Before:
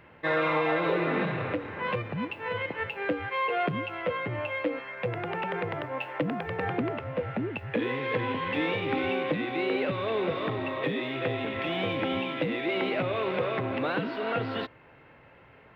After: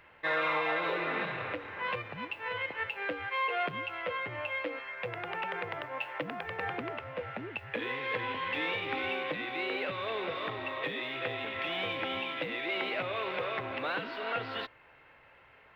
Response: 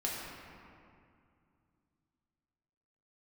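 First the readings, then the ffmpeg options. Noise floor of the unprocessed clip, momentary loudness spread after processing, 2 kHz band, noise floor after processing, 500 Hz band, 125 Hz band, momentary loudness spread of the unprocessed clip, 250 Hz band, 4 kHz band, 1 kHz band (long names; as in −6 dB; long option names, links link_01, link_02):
−55 dBFS, 7 LU, −1.0 dB, −59 dBFS, −7.0 dB, −12.0 dB, 6 LU, −11.5 dB, −0.5 dB, −3.0 dB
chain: -af "equalizer=frequency=180:width=0.38:gain=-13.5"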